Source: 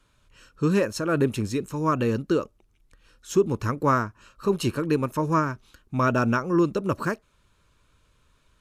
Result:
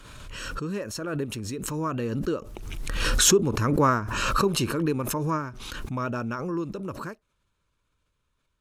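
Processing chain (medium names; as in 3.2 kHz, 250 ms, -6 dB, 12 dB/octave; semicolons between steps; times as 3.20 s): Doppler pass-by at 3.75 s, 5 m/s, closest 4.9 m; swell ahead of each attack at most 29 dB/s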